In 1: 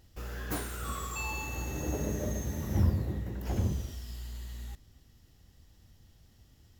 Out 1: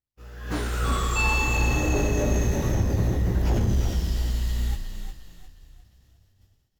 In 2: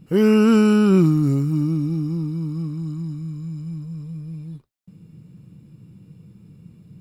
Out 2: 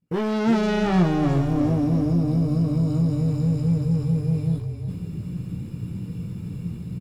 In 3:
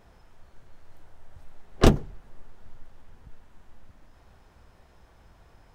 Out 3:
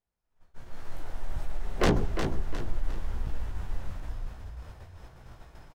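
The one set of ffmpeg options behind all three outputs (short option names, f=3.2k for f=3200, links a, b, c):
-filter_complex "[0:a]acrossover=split=6900[a][b];[b]acompressor=threshold=-59dB:ratio=4:attack=1:release=60[c];[a][c]amix=inputs=2:normalize=0,asoftclip=type=hard:threshold=-18.5dB,dynaudnorm=f=410:g=3:m=15dB,alimiter=limit=-11.5dB:level=0:latency=1:release=31,agate=range=-33dB:threshold=-31dB:ratio=3:detection=peak,asoftclip=type=tanh:threshold=-15.5dB,asplit=2[d][e];[e]adelay=17,volume=-4.5dB[f];[d][f]amix=inputs=2:normalize=0,asplit=2[g][h];[h]asplit=5[i][j][k][l][m];[i]adelay=356,afreqshift=-31,volume=-7dB[n];[j]adelay=712,afreqshift=-62,volume=-15.2dB[o];[k]adelay=1068,afreqshift=-93,volume=-23.4dB[p];[l]adelay=1424,afreqshift=-124,volume=-31.5dB[q];[m]adelay=1780,afreqshift=-155,volume=-39.7dB[r];[n][o][p][q][r]amix=inputs=5:normalize=0[s];[g][s]amix=inputs=2:normalize=0,volume=-3dB" -ar 48000 -c:a libopus -b:a 256k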